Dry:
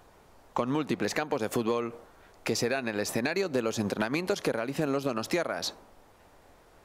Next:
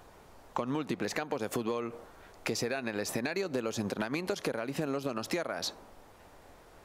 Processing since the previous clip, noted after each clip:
downward compressor 2 to 1, threshold −36 dBFS, peak gain reduction 7.5 dB
level +2 dB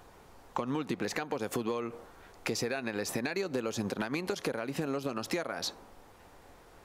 notch filter 620 Hz, Q 12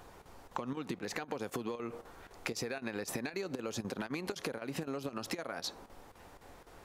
downward compressor, threshold −35 dBFS, peak gain reduction 7.5 dB
square-wave tremolo 3.9 Hz, depth 65%, duty 85%
level +1 dB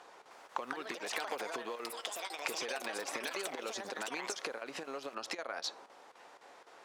band-pass filter 510–7,100 Hz
delay with pitch and tempo change per echo 310 ms, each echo +6 semitones, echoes 2
level +1.5 dB

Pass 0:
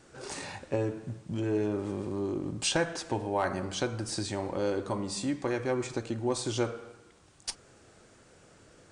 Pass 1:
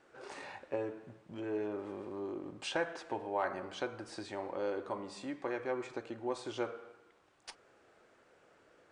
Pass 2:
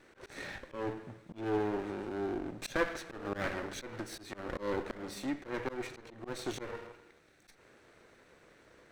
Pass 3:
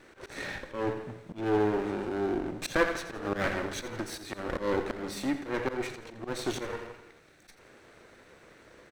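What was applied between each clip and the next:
bass and treble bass −15 dB, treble −15 dB; level −4 dB
lower of the sound and its delayed copy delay 0.51 ms; volume swells 156 ms; level +6 dB
repeating echo 85 ms, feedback 47%, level −13 dB; level +5.5 dB

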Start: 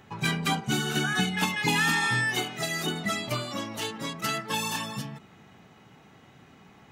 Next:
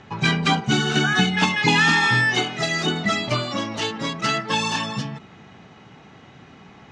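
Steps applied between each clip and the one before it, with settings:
low-pass filter 6,300 Hz 24 dB per octave
level +7.5 dB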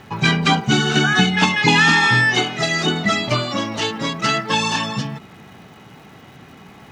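surface crackle 570 per second −48 dBFS
level +3.5 dB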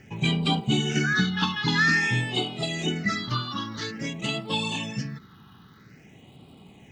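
all-pass phaser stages 6, 0.5 Hz, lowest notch 580–1,700 Hz
level −6.5 dB

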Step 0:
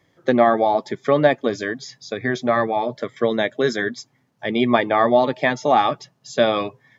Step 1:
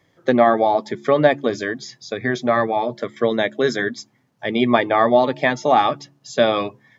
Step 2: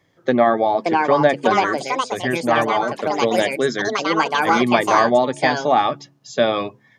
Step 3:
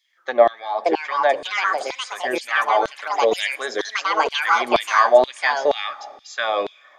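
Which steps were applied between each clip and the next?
hum removal 70.92 Hz, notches 5; level +1 dB
delay with pitch and tempo change per echo 647 ms, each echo +5 semitones, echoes 2; level −1 dB
four-comb reverb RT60 1.9 s, combs from 28 ms, DRR 19 dB; auto-filter high-pass saw down 2.1 Hz 380–3,800 Hz; level −3 dB

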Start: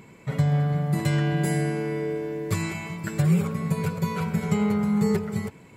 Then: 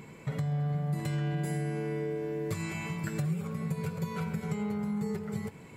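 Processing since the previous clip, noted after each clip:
downward compressor 6 to 1, threshold −32 dBFS, peak gain reduction 14.5 dB
convolution reverb, pre-delay 3 ms, DRR 11 dB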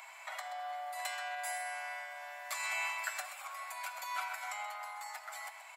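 Butterworth high-pass 640 Hz 96 dB per octave
slap from a distant wall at 22 metres, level −10 dB
level +4.5 dB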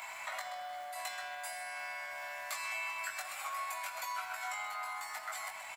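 downward compressor, threshold −43 dBFS, peak gain reduction 10.5 dB
surface crackle 480 per second −55 dBFS
double-tracking delay 20 ms −3.5 dB
level +5 dB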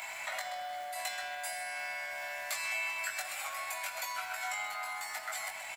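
parametric band 1,100 Hz −8 dB 0.53 octaves
level +4.5 dB

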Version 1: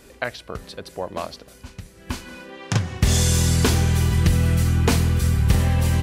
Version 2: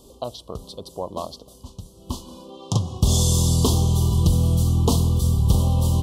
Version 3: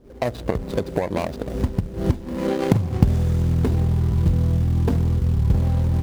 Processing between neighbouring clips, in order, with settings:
elliptic band-stop filter 1,100–3,200 Hz, stop band 50 dB
running median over 41 samples; camcorder AGC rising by 60 dB per second; in parallel at −10 dB: floating-point word with a short mantissa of 2 bits; on the sum: level −3 dB

